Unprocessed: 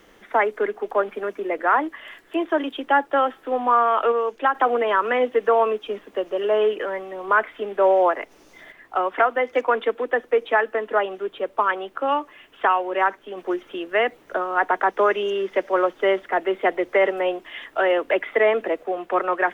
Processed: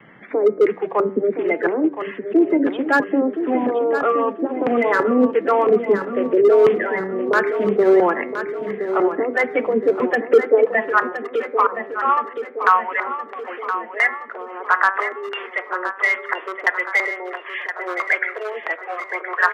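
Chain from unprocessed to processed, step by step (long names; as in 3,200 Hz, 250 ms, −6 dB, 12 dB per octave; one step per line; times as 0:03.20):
spectral magnitudes quantised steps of 30 dB
noise gate with hold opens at −44 dBFS
low-shelf EQ 350 Hz +9.5 dB
in parallel at +2 dB: brickwall limiter −14 dBFS, peak gain reduction 8.5 dB
on the sum: auto-filter low-pass square 1.5 Hz 410–2,100 Hz
hard clipping −2.5 dBFS, distortion −22 dB
high-pass filter sweep 150 Hz → 1,100 Hz, 0:10.14–0:10.91
hum removal 96.57 Hz, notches 26
on a send: repeating echo 1,019 ms, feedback 52%, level −9.5 dB
on the sum: level −7 dB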